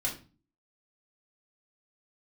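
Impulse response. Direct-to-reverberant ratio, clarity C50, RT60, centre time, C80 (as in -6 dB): -4.0 dB, 9.5 dB, 0.35 s, 20 ms, 15.0 dB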